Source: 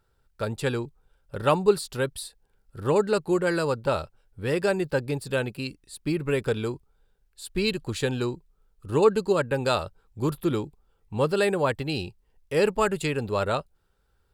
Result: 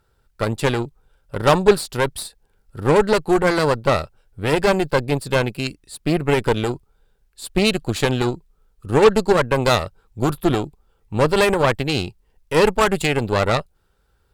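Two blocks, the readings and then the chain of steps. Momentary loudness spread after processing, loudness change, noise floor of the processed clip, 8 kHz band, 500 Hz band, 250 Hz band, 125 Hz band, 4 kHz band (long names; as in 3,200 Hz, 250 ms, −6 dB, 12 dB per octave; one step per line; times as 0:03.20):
13 LU, +7.0 dB, −64 dBFS, +7.5 dB, +6.5 dB, +7.0 dB, +7.5 dB, +9.0 dB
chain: harmonic generator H 8 −17 dB, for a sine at −7.5 dBFS
level +6 dB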